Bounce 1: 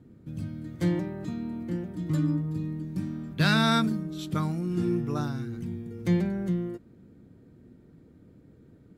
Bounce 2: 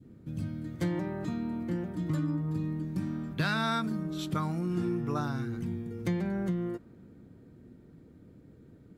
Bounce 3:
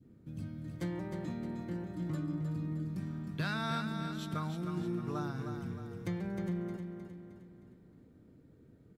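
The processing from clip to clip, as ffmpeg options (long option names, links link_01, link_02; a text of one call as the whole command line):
ffmpeg -i in.wav -af "adynamicequalizer=threshold=0.00562:dfrequency=1100:dqfactor=0.74:tfrequency=1100:tqfactor=0.74:attack=5:release=100:ratio=0.375:range=3:mode=boostabove:tftype=bell,acompressor=threshold=-27dB:ratio=6" out.wav
ffmpeg -i in.wav -af "aecho=1:1:310|620|930|1240|1550|1860:0.447|0.21|0.0987|0.0464|0.0218|0.0102,volume=-6.5dB" out.wav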